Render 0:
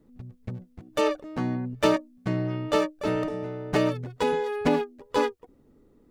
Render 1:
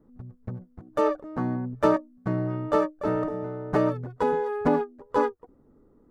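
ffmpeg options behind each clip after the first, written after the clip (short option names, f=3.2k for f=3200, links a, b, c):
-af "highshelf=f=1.9k:t=q:w=1.5:g=-11"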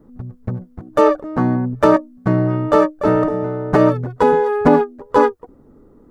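-af "alimiter=level_in=12dB:limit=-1dB:release=50:level=0:latency=1,volume=-1dB"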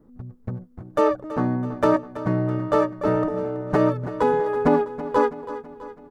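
-af "aecho=1:1:328|656|984|1312|1640:0.2|0.106|0.056|0.0297|0.0157,volume=-6.5dB"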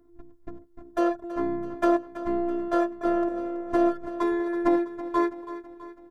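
-af "afftfilt=real='hypot(re,im)*cos(PI*b)':imag='0':win_size=512:overlap=0.75"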